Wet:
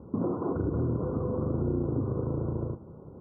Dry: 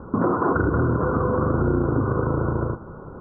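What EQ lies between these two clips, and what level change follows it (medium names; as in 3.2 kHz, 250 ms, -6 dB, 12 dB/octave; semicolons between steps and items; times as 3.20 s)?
Gaussian low-pass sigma 9.6 samples; high-pass 69 Hz; distance through air 430 m; -6.0 dB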